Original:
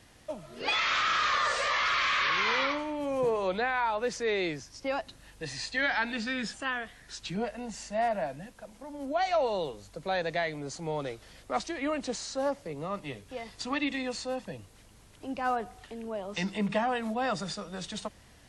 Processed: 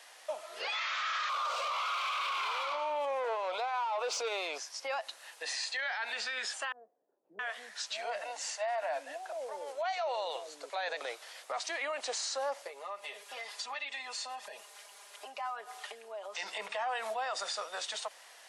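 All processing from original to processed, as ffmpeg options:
-filter_complex "[0:a]asettb=1/sr,asplit=3[a][b][c];[a]atrim=end=1.294[d];[b]atrim=start=1.29:end=4.58,asetpts=PTS-STARTPTS,afade=t=in:d=0.004:c=qsin,afade=t=out:st=3.286:d=0.004:c=qsin,asuperstop=centerf=1800:order=4:qfactor=2,asplit=2[e][f];[f]highpass=f=720:p=1,volume=18dB,asoftclip=type=tanh:threshold=-18dB[g];[e][g]amix=inputs=2:normalize=0,lowpass=f=1.8k:p=1,volume=-6dB[h];[c]atrim=start=4.576[i];[d][h]acrossfade=d=0.004:c1=hsin:c2=qsin[j];[j][i]acrossfade=d=0.004:c1=qsin:c2=hsin,asettb=1/sr,asplit=3[k][l][m];[k]atrim=end=6.724[n];[l]atrim=start=6.72:end=11.01,asetpts=PTS-STARTPTS,afade=t=in:d=0.004:c=qsin,afade=t=out:st=4.286:d=0.004:c=qsin,lowpass=10k,acrossover=split=410[o][p];[p]adelay=670[q];[o][q]amix=inputs=2:normalize=0,atrim=end_sample=189189[r];[m]atrim=start=11.006[s];[n][r]acrossfade=d=0.004:c1=hsin:c2=qsin[t];[t][s]acrossfade=d=0.004:c1=qsin:c2=hsin,asettb=1/sr,asplit=3[u][v][w];[u]atrim=end=12.674[x];[v]atrim=start=12.67:end=16.35,asetpts=PTS-STARTPTS,afade=t=in:d=0.004:c=qsin,afade=t=out:st=3.676:d=0.004:c=qsin,aecho=1:1:4.9:0.9,atrim=end_sample=162288,acompressor=threshold=-40dB:ratio=8:attack=3.2:release=140:knee=1:detection=peak[y];[w]atrim=start=16.346[z];[x][y]acrossfade=d=0.004:c1=hsin:c2=qsin[aa];[aa][z]acrossfade=d=0.004:c1=qsin:c2=hsin,highpass=f=600:w=0.5412,highpass=f=600:w=1.3066,acompressor=threshold=-30dB:ratio=6,alimiter=level_in=9dB:limit=-24dB:level=0:latency=1:release=41,volume=-9dB,volume=5.5dB"

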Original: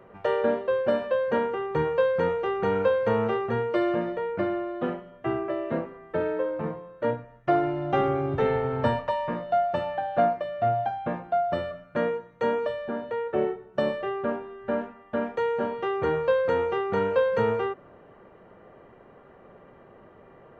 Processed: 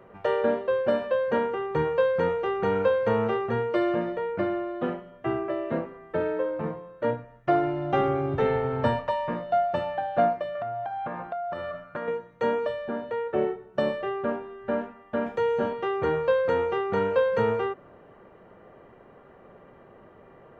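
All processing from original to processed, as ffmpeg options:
-filter_complex "[0:a]asettb=1/sr,asplit=3[a][b][c];[a]atrim=end=10.554[d];[b]atrim=start=10.55:end=12.08,asetpts=PTS-STARTPTS,afade=t=in:d=0.004:c=qsin,afade=t=out:st=1.526:d=0.004:c=qsin,equalizer=f=1.2k:t=o:w=1.6:g=9.5,acompressor=threshold=-29dB:ratio=12:attack=3.2:release=140:knee=1:detection=peak[e];[c]atrim=start=12.076[f];[d][e]acrossfade=d=0.004:c1=hsin:c2=qsin[g];[g][f]acrossfade=d=0.004:c1=qsin:c2=hsin,asettb=1/sr,asplit=3[h][i][j];[h]atrim=end=15.264[k];[i]atrim=start=15.26:end=15.73,asetpts=PTS-STARTPTS,afade=t=in:d=0.004:c=qsin,afade=t=out:st=0.466:d=0.004:c=qsin,acrossover=split=3200[l][m];[m]acompressor=threshold=-58dB:ratio=4:attack=1:release=60[n];[l][n]amix=inputs=2:normalize=0,bass=f=250:g=5,treble=f=4k:g=9,asplit=2[o][p];[p]adelay=19,volume=-11dB[q];[o][q]amix=inputs=2:normalize=0,atrim=end_sample=20727[r];[j]atrim=start=15.726[s];[k][r]acrossfade=d=0.004:c1=hsin:c2=qsin[t];[t][s]acrossfade=d=0.004:c1=qsin:c2=hsin"

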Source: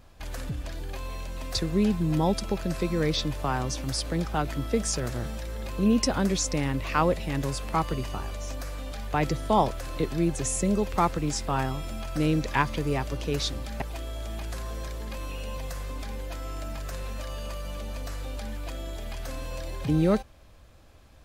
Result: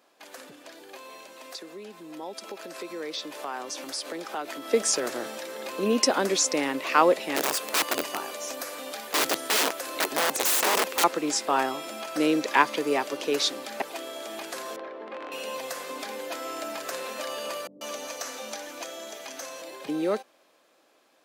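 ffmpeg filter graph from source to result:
-filter_complex "[0:a]asettb=1/sr,asplit=3[a][b][c];[a]atrim=end=1.334[d];[b]atrim=start=1.33:end=4.68,asetpts=PTS-STARTPTS,afade=t=in:d=0.004:c=qsin,afade=t=out:st=3.346:d=0.004:c=qsin,highpass=f=230:p=1,acompressor=threshold=-36dB:ratio=2.5:attack=3.2:release=140:knee=1:detection=peak,asoftclip=type=hard:threshold=-26.5dB[e];[c]atrim=start=4.676[f];[d][e]acrossfade=d=0.004:c1=hsin:c2=qsin[g];[g][f]acrossfade=d=0.004:c1=qsin:c2=hsin,asettb=1/sr,asplit=3[h][i][j];[h]atrim=end=7.364[k];[i]atrim=start=7.36:end=11.04,asetpts=PTS-STARTPTS,afade=t=in:d=0.004:c=qsin,afade=t=out:st=3.676:d=0.004:c=qsin,highshelf=f=10k:g=9,aeval=exprs='(mod(13.3*val(0)+1,2)-1)/13.3':c=same[l];[j]atrim=start=11.036[m];[k][l]acrossfade=d=0.004:c1=hsin:c2=qsin[n];[n][m]acrossfade=d=0.004:c1=qsin:c2=hsin,asettb=1/sr,asplit=3[o][p][q];[o]atrim=end=14.764[r];[p]atrim=start=14.76:end=15.32,asetpts=PTS-STARTPTS,afade=t=in:d=0.004:c=qsin,afade=t=out:st=0.556:d=0.004:c=qsin,aeval=exprs='(mod(22.4*val(0)+1,2)-1)/22.4':c=same,highpass=220,lowpass=3.8k,adynamicsmooth=sensitivity=1.5:basefreq=1.8k[s];[q]atrim=start=15.316[t];[r][s]acrossfade=d=0.004:c1=hsin:c2=qsin[u];[u][t]acrossfade=d=0.004:c1=qsin:c2=hsin,asettb=1/sr,asplit=3[v][w][x];[v]atrim=end=17.674[y];[w]atrim=start=17.67:end=19.62,asetpts=PTS-STARTPTS,afade=t=in:d=0.004:c=qsin,afade=t=out:st=1.946:d=0.004:c=qsin,highpass=94,equalizer=f=6.1k:t=o:w=0.24:g=11,acrossover=split=330[z][aa];[aa]adelay=140[ab];[z][ab]amix=inputs=2:normalize=0,atrim=end_sample=85995[ac];[x]atrim=start=19.616[ad];[y][ac]acrossfade=d=0.004:c1=hsin:c2=qsin[ae];[ae][ad]acrossfade=d=0.004:c1=qsin:c2=hsin,highpass=f=300:w=0.5412,highpass=f=300:w=1.3066,dynaudnorm=f=360:g=17:m=11dB,volume=-3dB"

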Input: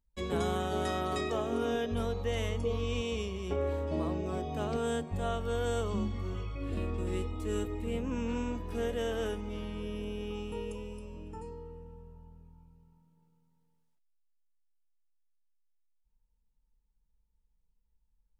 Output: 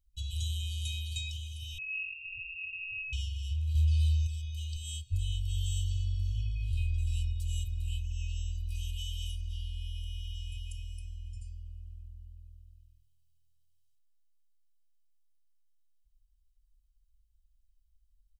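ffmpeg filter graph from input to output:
-filter_complex "[0:a]asettb=1/sr,asplit=3[a][b][c];[a]atrim=end=1.784[d];[b]atrim=start=1.78:end=3.13,asetpts=PTS-STARTPTS,afade=t=in:d=0.004:c=qsin,afade=t=out:st=1.346:d=0.004:c=qsin,aeval=exprs='val(0)*gte(abs(val(0)),0.00891)':c=same,lowpass=f=2.4k:t=q:w=0.5098,lowpass=f=2.4k:t=q:w=0.6013,lowpass=f=2.4k:t=q:w=0.9,lowpass=f=2.4k:t=q:w=2.563,afreqshift=-2800[e];[c]atrim=start=3.126[f];[d][e]acrossfade=d=0.004:c1=hsin:c2=qsin[g];[g][f]acrossfade=d=0.004:c1=qsin:c2=hsin,asettb=1/sr,asplit=3[h][i][j];[h]atrim=end=3.754[k];[i]atrim=start=3.75:end=4.27,asetpts=PTS-STARTPTS,afade=t=in:d=0.004:c=qsin,afade=t=out:st=0.516:d=0.004:c=qsin,acontrast=64,asplit=2[l][m];[m]adelay=16,volume=-5dB[n];[l][n]amix=inputs=2:normalize=0,atrim=end_sample=22932[o];[j]atrim=start=4.266[p];[k][o]acrossfade=d=0.004:c1=hsin:c2=qsin[q];[q][p]acrossfade=d=0.004:c1=qsin:c2=hsin,afftfilt=real='re*(1-between(b*sr/4096,120,2500))':imag='im*(1-between(b*sr/4096,120,2500))':win_size=4096:overlap=0.75,aecho=1:1:1.3:0.99"

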